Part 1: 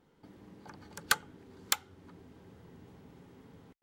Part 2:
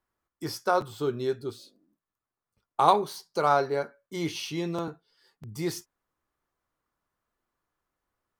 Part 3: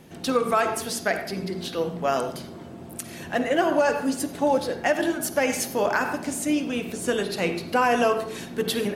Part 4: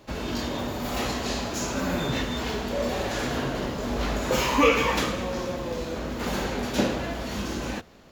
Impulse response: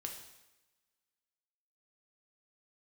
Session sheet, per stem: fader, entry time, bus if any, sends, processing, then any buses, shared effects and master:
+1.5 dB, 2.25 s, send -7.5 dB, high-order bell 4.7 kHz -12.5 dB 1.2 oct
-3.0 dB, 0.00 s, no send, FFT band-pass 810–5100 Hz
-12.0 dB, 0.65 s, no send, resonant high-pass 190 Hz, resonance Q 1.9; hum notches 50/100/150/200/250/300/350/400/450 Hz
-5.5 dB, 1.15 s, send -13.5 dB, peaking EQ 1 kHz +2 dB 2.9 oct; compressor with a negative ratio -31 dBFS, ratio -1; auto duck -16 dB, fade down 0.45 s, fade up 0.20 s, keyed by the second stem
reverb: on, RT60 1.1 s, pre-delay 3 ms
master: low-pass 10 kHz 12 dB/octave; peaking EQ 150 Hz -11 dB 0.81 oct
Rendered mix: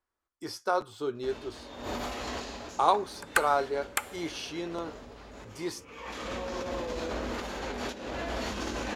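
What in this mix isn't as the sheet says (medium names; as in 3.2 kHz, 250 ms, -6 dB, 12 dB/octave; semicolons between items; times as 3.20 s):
stem 2: missing FFT band-pass 810–5100 Hz; stem 3: muted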